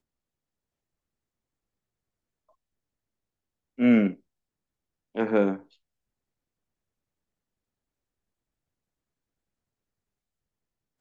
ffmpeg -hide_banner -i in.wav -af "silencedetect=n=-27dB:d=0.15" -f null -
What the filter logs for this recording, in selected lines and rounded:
silence_start: 0.00
silence_end: 3.79 | silence_duration: 3.79
silence_start: 4.10
silence_end: 5.17 | silence_duration: 1.07
silence_start: 5.54
silence_end: 11.00 | silence_duration: 5.47